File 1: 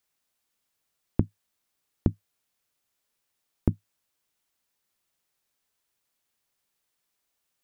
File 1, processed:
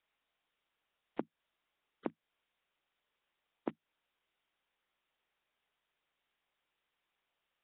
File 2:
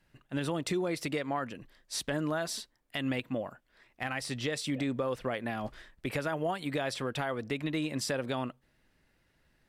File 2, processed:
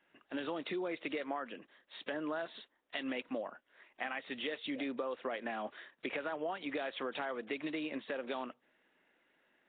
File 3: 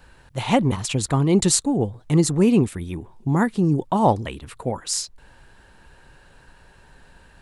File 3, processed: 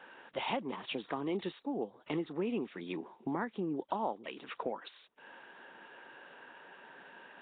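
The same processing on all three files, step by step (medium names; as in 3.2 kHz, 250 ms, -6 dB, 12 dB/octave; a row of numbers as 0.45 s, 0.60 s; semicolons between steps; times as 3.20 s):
Bessel high-pass 340 Hz, order 6; compression 4:1, threshold -37 dBFS; trim +2 dB; Nellymoser 16 kbps 8 kHz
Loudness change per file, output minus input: -14.0 LU, -5.5 LU, -17.0 LU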